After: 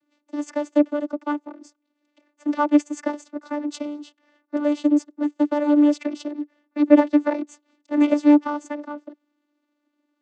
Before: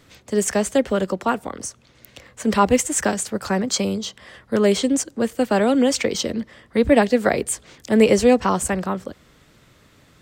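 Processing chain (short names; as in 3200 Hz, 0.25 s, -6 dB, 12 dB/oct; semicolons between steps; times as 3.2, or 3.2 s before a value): power-law curve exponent 1.4; vocoder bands 16, saw 294 Hz; gain +3 dB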